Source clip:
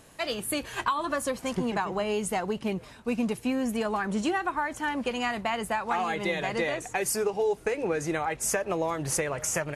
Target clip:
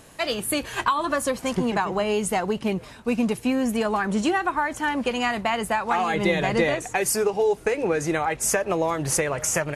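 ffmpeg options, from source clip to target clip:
-filter_complex "[0:a]asettb=1/sr,asplit=3[a][b][c];[a]atrim=end=6.144[d];[b]atrim=start=6.14:end=6.75,asetpts=PTS-STARTPTS,afade=t=in:d=0.004:c=qsin,afade=t=out:st=0.606:d=0.004:c=qsin,lowshelf=f=330:g=7[e];[c]atrim=start=6.746[f];[d][e]acrossfade=d=0.004:c1=hsin:c2=qsin[g];[g][f]acrossfade=d=0.004:c1=qsin:c2=hsin,volume=5dB"

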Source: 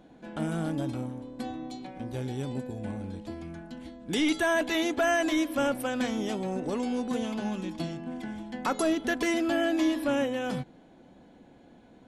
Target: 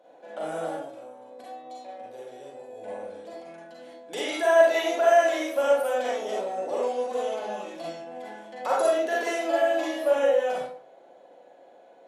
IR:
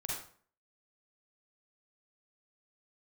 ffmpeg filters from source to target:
-filter_complex "[0:a]asettb=1/sr,asplit=3[a][b][c];[a]atrim=end=0.774[d];[b]atrim=start=0.77:end=2.78,asetpts=PTS-STARTPTS,afade=t=in:d=0.004:c=qsin,afade=t=out:st=2.006:d=0.004:c=qsin,acompressor=threshold=-38dB:ratio=6[e];[c]atrim=start=2.776[f];[d][e]acrossfade=d=0.004:c1=hsin:c2=qsin[g];[g][f]acrossfade=d=0.004:c1=qsin:c2=hsin,highpass=f=560:t=q:w=4.9[h];[1:a]atrim=start_sample=2205,asetrate=48510,aresample=44100[i];[h][i]afir=irnorm=-1:irlink=0,volume=-1dB"

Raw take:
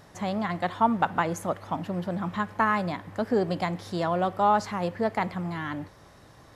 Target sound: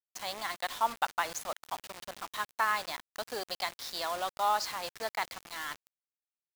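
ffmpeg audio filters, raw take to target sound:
-af "highpass=750,equalizer=f=4.6k:t=o:w=1.3:g=12,acrusher=bits=5:mix=0:aa=0.000001,volume=-5dB"

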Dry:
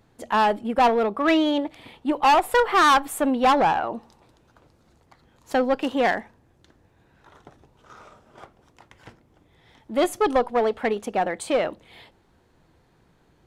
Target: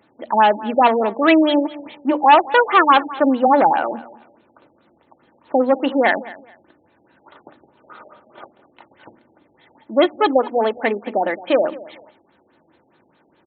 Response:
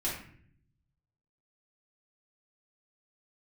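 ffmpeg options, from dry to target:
-filter_complex "[0:a]highpass=200,aemphasis=mode=production:type=50fm,bandreject=f=60:t=h:w=6,bandreject=f=120:t=h:w=6,bandreject=f=180:t=h:w=6,bandreject=f=240:t=h:w=6,bandreject=f=300:t=h:w=6,aecho=1:1:3.4:0.33,asplit=2[a][b];[b]aecho=0:1:216|432:0.112|0.0258[c];[a][c]amix=inputs=2:normalize=0,afftfilt=real='re*lt(b*sr/1024,820*pow(4400/820,0.5+0.5*sin(2*PI*4.8*pts/sr)))':imag='im*lt(b*sr/1024,820*pow(4400/820,0.5+0.5*sin(2*PI*4.8*pts/sr)))':win_size=1024:overlap=0.75,volume=5.5dB"

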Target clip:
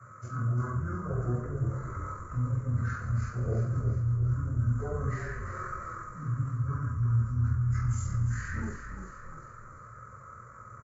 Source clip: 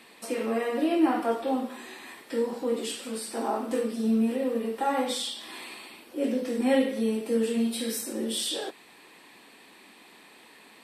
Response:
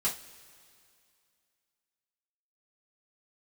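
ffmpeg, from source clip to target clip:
-filter_complex "[0:a]firequalizer=gain_entry='entry(120,0);entry(180,12);entry(350,-5);entry(510,-14);entry(1000,-5);entry(1600,-19);entry(2300,13);entry(5200,-15);entry(8500,-15);entry(13000,13)':delay=0.05:min_phase=1,areverse,acompressor=threshold=-29dB:ratio=12,areverse,acrossover=split=210 2100:gain=0.1 1 0.141[a][b][c];[a][b][c]amix=inputs=3:normalize=0,asplit=2[d][e];[e]adelay=42,volume=-12dB[f];[d][f]amix=inputs=2:normalize=0[g];[1:a]atrim=start_sample=2205,afade=t=out:st=0.36:d=0.01,atrim=end_sample=16317[h];[g][h]afir=irnorm=-1:irlink=0,asetrate=23361,aresample=44100,atempo=1.88775,asplit=7[i][j][k][l][m][n][o];[j]adelay=349,afreqshift=-34,volume=-8dB[p];[k]adelay=698,afreqshift=-68,volume=-14.2dB[q];[l]adelay=1047,afreqshift=-102,volume=-20.4dB[r];[m]adelay=1396,afreqshift=-136,volume=-26.6dB[s];[n]adelay=1745,afreqshift=-170,volume=-32.8dB[t];[o]adelay=2094,afreqshift=-204,volume=-39dB[u];[i][p][q][r][s][t][u]amix=inputs=7:normalize=0"

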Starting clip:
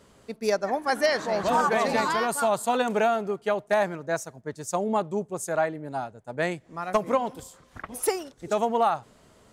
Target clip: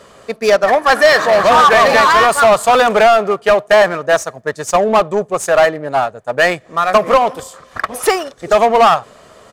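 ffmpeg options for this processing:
-filter_complex "[0:a]equalizer=f=1.4k:w=1.5:g=3,aecho=1:1:1.7:0.34,asplit=2[a][b];[b]highpass=f=720:p=1,volume=17dB,asoftclip=type=tanh:threshold=-9.5dB[c];[a][c]amix=inputs=2:normalize=0,lowpass=f=5.6k:p=1,volume=-6dB,asplit=2[d][e];[e]adynamicsmooth=sensitivity=7:basefreq=630,volume=-3dB[f];[d][f]amix=inputs=2:normalize=0,volume=3.5dB"

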